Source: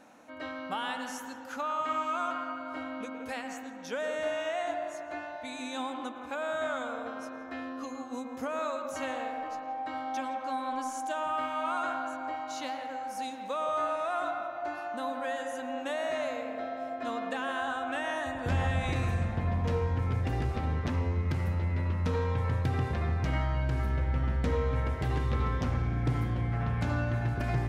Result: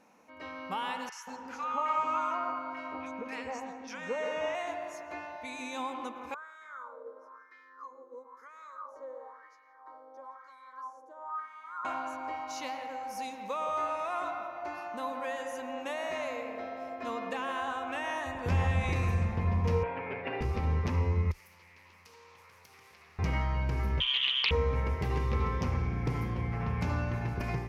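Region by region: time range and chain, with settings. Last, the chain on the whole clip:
1.09–4.55 s: low-pass 6.8 kHz + three bands offset in time mids, highs, lows 30/180 ms, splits 1.1/3.5 kHz + dynamic bell 950 Hz, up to +5 dB, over -45 dBFS, Q 0.9
6.34–11.85 s: treble shelf 4.7 kHz +7.5 dB + static phaser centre 710 Hz, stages 6 + wah-wah 1 Hz 500–2400 Hz, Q 3.3
19.83–20.41 s: cabinet simulation 350–3000 Hz, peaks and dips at 610 Hz +8 dB, 1.6 kHz +8 dB, 2.6 kHz +5 dB + comb 7.2 ms, depth 75%
21.31–23.19 s: differentiator + compression 3:1, threshold -53 dBFS + loudspeaker Doppler distortion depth 0.42 ms
24.00–24.51 s: frequency inversion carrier 3.2 kHz + loudspeaker Doppler distortion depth 0.53 ms
whole clip: rippled EQ curve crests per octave 0.82, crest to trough 7 dB; level rider gain up to 5.5 dB; trim -6.5 dB

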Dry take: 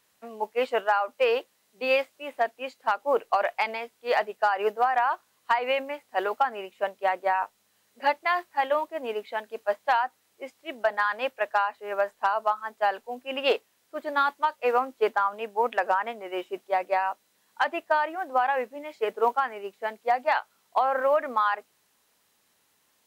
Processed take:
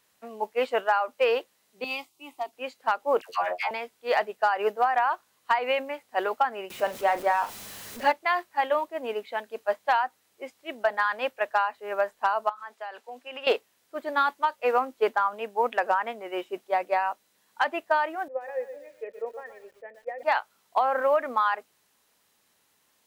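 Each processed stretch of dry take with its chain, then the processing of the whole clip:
1.84–2.53 s: peaking EQ 590 Hz -13.5 dB 0.46 oct + static phaser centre 330 Hz, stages 8
3.21–3.71 s: robot voice 89.8 Hz + phase dispersion lows, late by 93 ms, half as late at 1 kHz + tape noise reduction on one side only encoder only
6.70–8.12 s: jump at every zero crossing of -37 dBFS + bass shelf 330 Hz +3.5 dB + doubling 39 ms -12 dB
12.49–13.47 s: frequency weighting A + compression 4:1, threshold -35 dBFS
18.28–20.23 s: cascade formant filter e + bit-crushed delay 122 ms, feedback 35%, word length 9-bit, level -10 dB
whole clip: none

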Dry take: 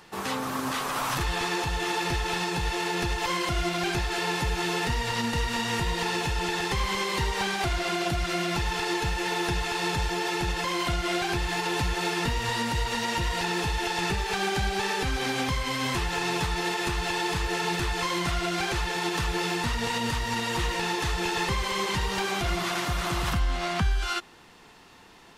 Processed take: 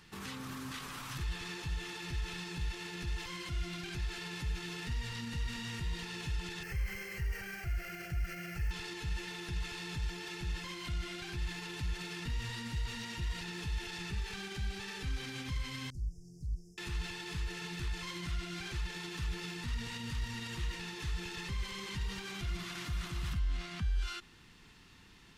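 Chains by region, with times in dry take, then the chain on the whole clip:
6.63–8.71 s: static phaser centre 1 kHz, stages 6 + careless resampling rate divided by 3×, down filtered, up hold
15.90–16.78 s: brick-wall FIR band-stop 820–5000 Hz + amplifier tone stack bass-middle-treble 10-0-1 + loudspeaker Doppler distortion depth 0.48 ms
whole clip: treble shelf 4.6 kHz -8.5 dB; peak limiter -28 dBFS; amplifier tone stack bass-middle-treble 6-0-2; trim +14 dB

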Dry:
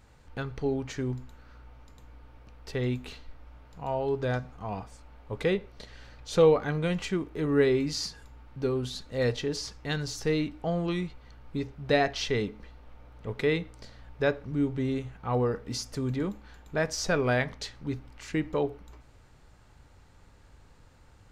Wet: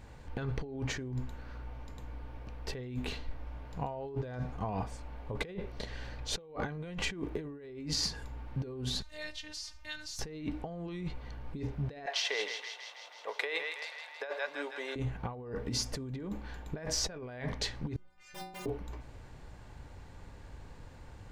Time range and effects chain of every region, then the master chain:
9.02–10.19 s: amplifier tone stack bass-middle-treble 10-0-10 + compression 1.5:1, threshold -47 dBFS + robot voice 305 Hz
12.06–14.96 s: high-pass 600 Hz 24 dB/octave + thinning echo 161 ms, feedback 70%, high-pass 980 Hz, level -9 dB
17.96–18.66 s: integer overflow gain 25.5 dB + inharmonic resonator 180 Hz, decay 0.82 s, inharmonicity 0.008
whole clip: treble shelf 3 kHz -6 dB; band-stop 1.3 kHz, Q 8.5; compressor with a negative ratio -38 dBFS, ratio -1

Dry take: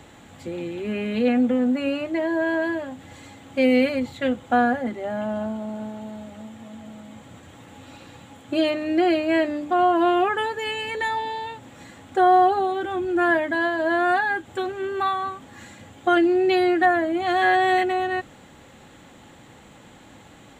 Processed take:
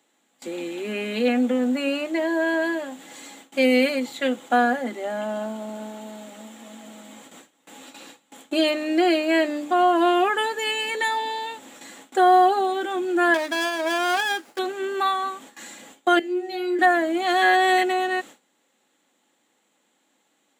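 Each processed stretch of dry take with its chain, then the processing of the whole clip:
13.34–14.59 s: bass shelf 500 Hz -6.5 dB + sliding maximum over 9 samples
16.19–16.79 s: peaking EQ 1.2 kHz -3.5 dB 0.21 oct + inharmonic resonator 88 Hz, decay 0.5 s, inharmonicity 0.002
whole clip: gate with hold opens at -34 dBFS; high-pass 230 Hz 24 dB/octave; treble shelf 3.9 kHz +11.5 dB

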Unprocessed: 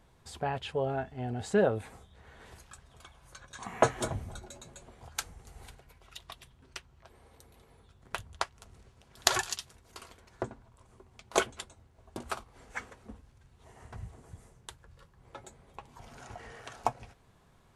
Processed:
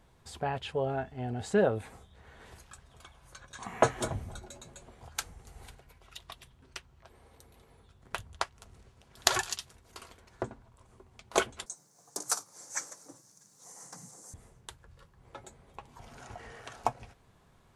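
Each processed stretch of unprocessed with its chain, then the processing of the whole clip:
11.66–14.34 s: high-pass 350 Hz 6 dB/octave + resonant high shelf 4.2 kHz +13.5 dB, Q 3 + frequency shift +64 Hz
whole clip: none

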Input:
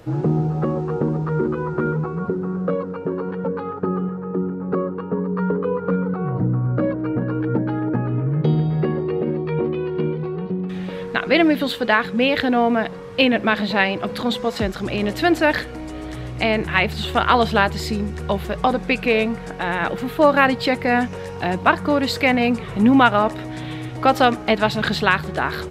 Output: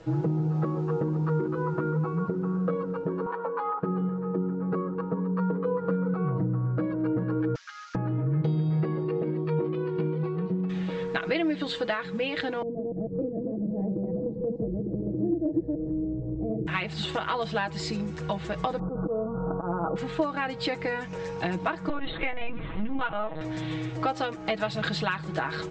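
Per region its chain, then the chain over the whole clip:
3.26–3.83 s: band-pass 540–4000 Hz + peaking EQ 1 kHz +12.5 dB 0.68 oct
7.55–7.95 s: CVSD coder 32 kbps + Chebyshev high-pass 1.2 kHz, order 5
12.62–16.67 s: chunks repeated in reverse 149 ms, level 0 dB + inverse Chebyshev low-pass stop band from 1.2 kHz, stop band 50 dB + upward compressor, threshold -21 dBFS
18.79–19.96 s: Chebyshev low-pass 1.4 kHz, order 8 + slow attack 136 ms + level flattener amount 50%
21.89–23.41 s: band-stop 480 Hz, Q 7.9 + de-hum 49.47 Hz, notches 19 + LPC vocoder at 8 kHz pitch kept
whole clip: compression 6:1, threshold -21 dBFS; steep low-pass 7.8 kHz 72 dB/octave; comb 6.2 ms, depth 70%; trim -5.5 dB

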